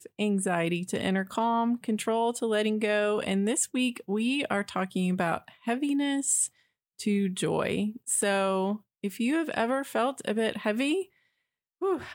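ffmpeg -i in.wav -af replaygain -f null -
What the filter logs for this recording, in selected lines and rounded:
track_gain = +10.2 dB
track_peak = 0.178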